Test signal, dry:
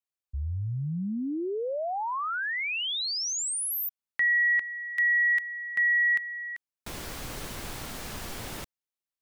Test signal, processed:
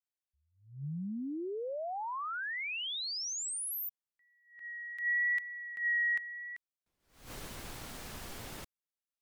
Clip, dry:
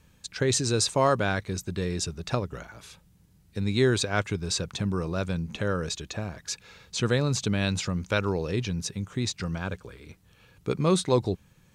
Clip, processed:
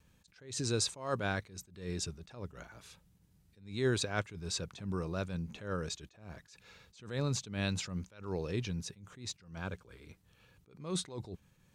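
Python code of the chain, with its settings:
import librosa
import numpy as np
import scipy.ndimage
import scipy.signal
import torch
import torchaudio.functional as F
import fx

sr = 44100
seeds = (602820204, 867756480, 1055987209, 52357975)

y = fx.vibrato(x, sr, rate_hz=0.79, depth_cents=16.0)
y = fx.attack_slew(y, sr, db_per_s=120.0)
y = F.gain(torch.from_numpy(y), -7.0).numpy()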